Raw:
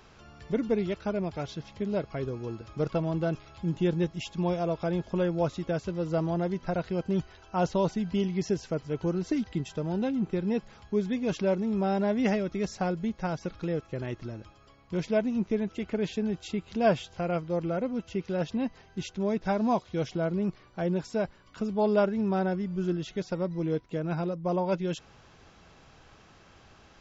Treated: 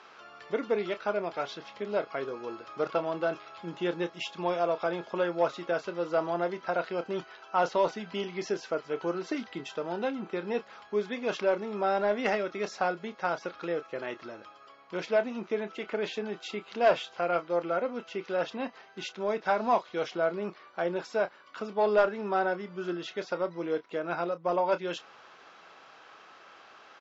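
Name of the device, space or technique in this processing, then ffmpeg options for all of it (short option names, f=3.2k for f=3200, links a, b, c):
intercom: -filter_complex "[0:a]highpass=490,lowpass=4.5k,equalizer=f=1.3k:t=o:w=0.49:g=5,asoftclip=type=tanh:threshold=-18dB,asplit=2[a][b];[b]adelay=29,volume=-12dB[c];[a][c]amix=inputs=2:normalize=0,volume=4dB"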